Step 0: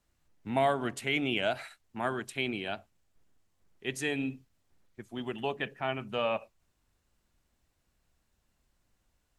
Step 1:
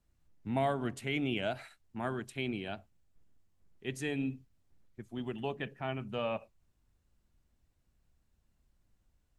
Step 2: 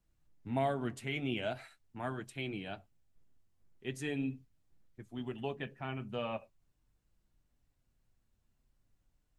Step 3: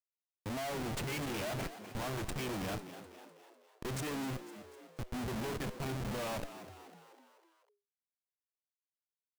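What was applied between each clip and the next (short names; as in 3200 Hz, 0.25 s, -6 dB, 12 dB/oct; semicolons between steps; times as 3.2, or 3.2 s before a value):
low shelf 300 Hz +10 dB; gain -6.5 dB
flange 0.42 Hz, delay 6.1 ms, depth 2.4 ms, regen -47%; gain +1.5 dB
power-law curve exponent 0.7; Schmitt trigger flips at -40.5 dBFS; frequency-shifting echo 0.25 s, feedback 53%, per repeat +81 Hz, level -12.5 dB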